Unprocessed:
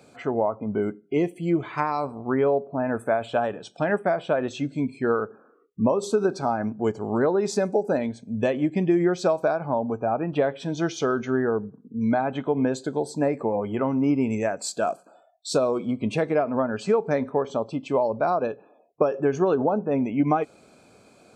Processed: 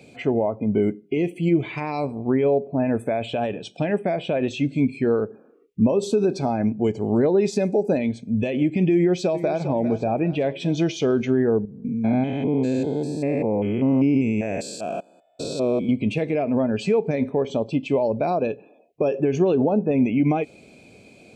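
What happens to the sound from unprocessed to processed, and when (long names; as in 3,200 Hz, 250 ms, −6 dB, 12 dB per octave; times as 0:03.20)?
0:08.94–0:09.61: delay throw 400 ms, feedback 50%, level −13.5 dB
0:11.65–0:15.89: spectrum averaged block by block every 200 ms
whole clip: high shelf with overshoot 1,800 Hz +10.5 dB, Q 3; brickwall limiter −16 dBFS; tilt shelving filter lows +9 dB, about 1,200 Hz; level −1.5 dB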